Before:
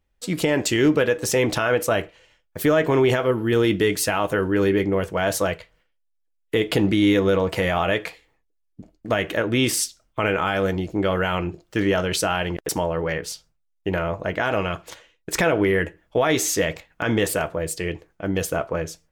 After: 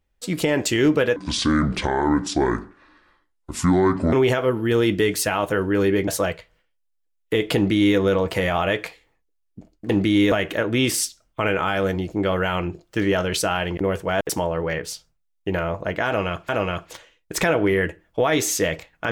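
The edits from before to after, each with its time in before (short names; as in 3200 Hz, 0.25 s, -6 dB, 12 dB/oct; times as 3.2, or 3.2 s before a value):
1.16–2.94 speed 60%
4.89–5.29 move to 12.6
6.77–7.19 copy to 9.11
14.46–14.88 loop, 2 plays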